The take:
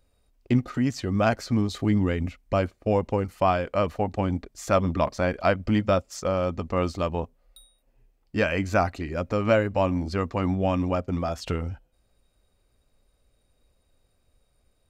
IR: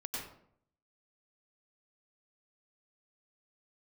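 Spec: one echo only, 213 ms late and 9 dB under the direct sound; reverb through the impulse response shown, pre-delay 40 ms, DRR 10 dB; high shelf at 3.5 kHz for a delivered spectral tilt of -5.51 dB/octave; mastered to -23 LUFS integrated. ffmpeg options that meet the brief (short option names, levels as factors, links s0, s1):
-filter_complex "[0:a]highshelf=f=3500:g=8,aecho=1:1:213:0.355,asplit=2[s0][s1];[1:a]atrim=start_sample=2205,adelay=40[s2];[s1][s2]afir=irnorm=-1:irlink=0,volume=0.282[s3];[s0][s3]amix=inputs=2:normalize=0,volume=1.19"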